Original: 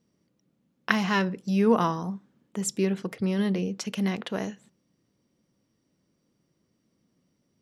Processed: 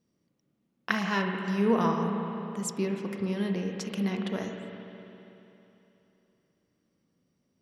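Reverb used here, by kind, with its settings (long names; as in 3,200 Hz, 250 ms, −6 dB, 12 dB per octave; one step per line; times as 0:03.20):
spring reverb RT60 3.2 s, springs 35/54 ms, chirp 70 ms, DRR 2.5 dB
level −4.5 dB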